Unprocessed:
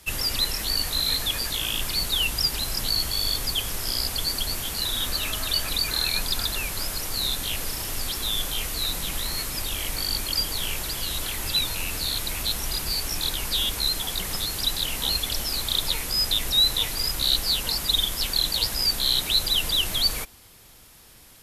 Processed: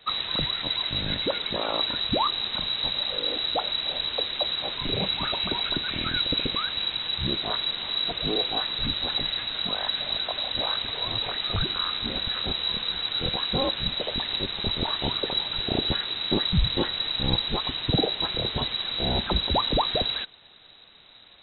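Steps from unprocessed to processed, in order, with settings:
parametric band 150 Hz +7.5 dB 0.74 octaves
voice inversion scrambler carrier 3,900 Hz

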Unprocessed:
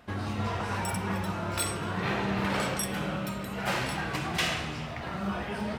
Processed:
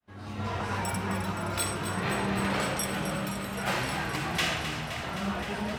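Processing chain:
fade in at the beginning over 0.57 s
on a send: feedback echo with a high-pass in the loop 260 ms, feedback 81%, level −10 dB

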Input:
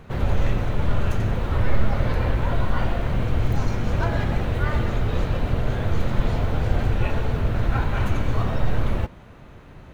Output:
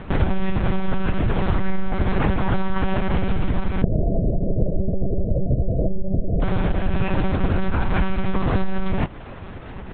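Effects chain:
0:03.82–0:06.42: Chebyshev low-pass filter 690 Hz, order 8
downward compressor, threshold −24 dBFS, peak gain reduction 12.5 dB
one-pitch LPC vocoder at 8 kHz 190 Hz
boost into a limiter +10 dB
level −1 dB

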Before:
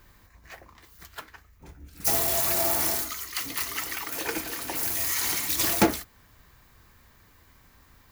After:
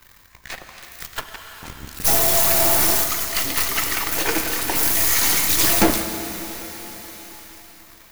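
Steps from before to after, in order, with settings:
gain on one half-wave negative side −12 dB
in parallel at −1 dB: brickwall limiter −17.5 dBFS, peak gain reduction 10 dB
on the sum: leveller curve on the samples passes 2
convolution reverb RT60 3.8 s, pre-delay 8 ms, DRR 6.5 dB
one half of a high-frequency compander encoder only

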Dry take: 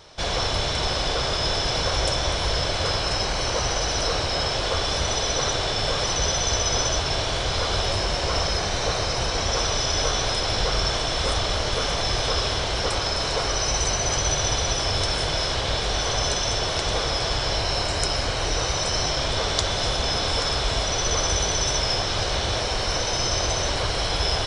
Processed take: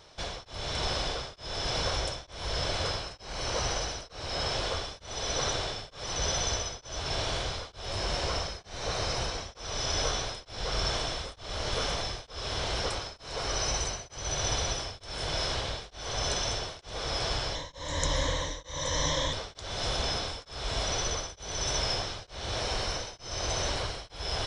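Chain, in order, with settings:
0:17.55–0:19.33: EQ curve with evenly spaced ripples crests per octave 1.1, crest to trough 15 dB
tremolo along a rectified sine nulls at 1.1 Hz
level −6 dB

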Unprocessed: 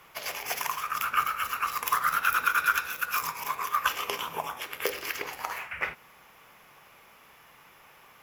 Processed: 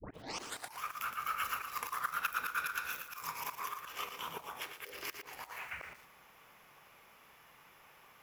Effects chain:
turntable start at the beginning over 0.82 s
volume swells 183 ms
feedback echo at a low word length 116 ms, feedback 35%, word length 8 bits, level −8 dB
level −5.5 dB

